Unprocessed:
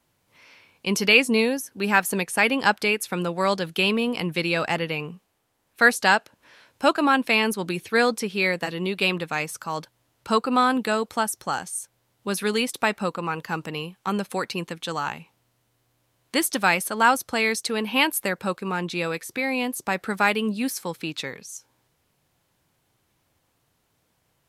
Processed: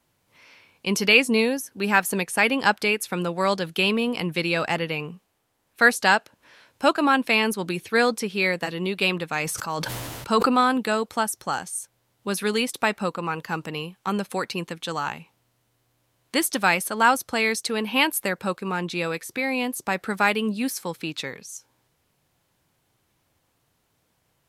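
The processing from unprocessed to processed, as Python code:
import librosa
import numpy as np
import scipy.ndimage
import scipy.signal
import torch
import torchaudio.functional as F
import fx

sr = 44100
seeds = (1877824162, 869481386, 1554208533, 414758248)

y = fx.sustainer(x, sr, db_per_s=23.0, at=(9.41, 10.61))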